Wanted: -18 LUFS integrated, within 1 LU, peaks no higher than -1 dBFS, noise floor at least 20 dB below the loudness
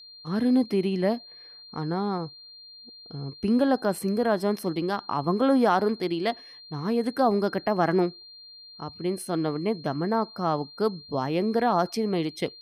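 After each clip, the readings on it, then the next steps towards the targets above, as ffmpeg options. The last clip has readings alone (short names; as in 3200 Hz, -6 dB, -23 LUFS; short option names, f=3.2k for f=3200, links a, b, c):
steady tone 4200 Hz; tone level -45 dBFS; loudness -26.0 LUFS; peak -10.0 dBFS; loudness target -18.0 LUFS
-> -af "bandreject=f=4.2k:w=30"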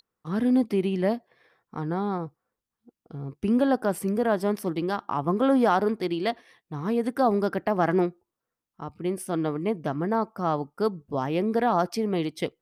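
steady tone none; loudness -26.5 LUFS; peak -10.0 dBFS; loudness target -18.0 LUFS
-> -af "volume=8.5dB"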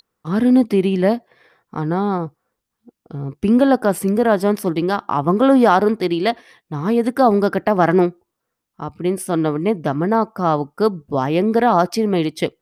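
loudness -18.0 LUFS; peak -1.5 dBFS; noise floor -79 dBFS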